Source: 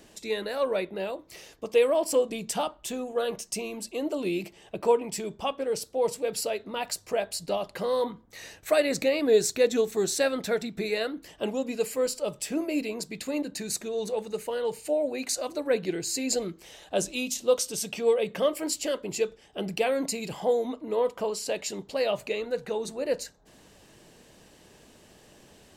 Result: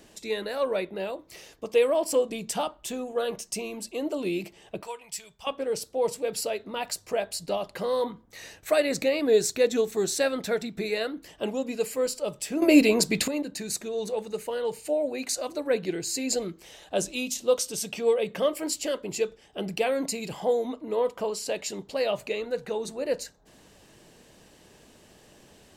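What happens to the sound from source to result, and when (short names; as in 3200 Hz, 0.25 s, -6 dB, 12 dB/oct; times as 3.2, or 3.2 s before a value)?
4.83–5.47 passive tone stack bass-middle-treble 10-0-10
12.62–13.28 gain +12 dB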